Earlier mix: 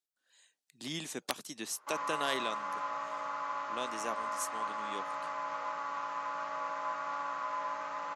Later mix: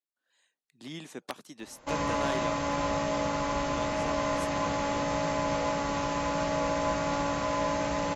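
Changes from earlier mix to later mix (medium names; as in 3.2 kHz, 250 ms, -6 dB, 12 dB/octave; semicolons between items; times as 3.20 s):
background: remove band-pass filter 1.2 kHz, Q 3.8; master: add treble shelf 3.1 kHz -10.5 dB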